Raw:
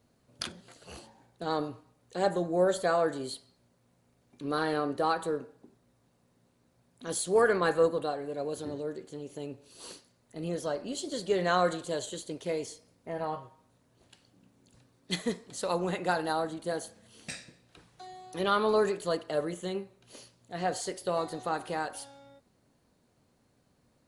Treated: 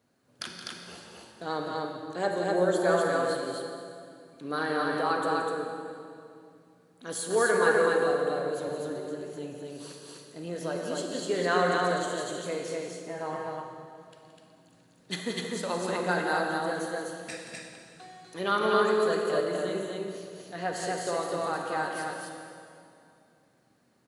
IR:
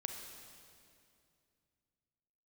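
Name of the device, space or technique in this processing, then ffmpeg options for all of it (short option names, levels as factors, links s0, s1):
stadium PA: -filter_complex "[0:a]highpass=130,equalizer=f=1600:t=o:w=0.62:g=5,aecho=1:1:172|250.7:0.316|0.794[s0];[1:a]atrim=start_sample=2205[s1];[s0][s1]afir=irnorm=-1:irlink=0"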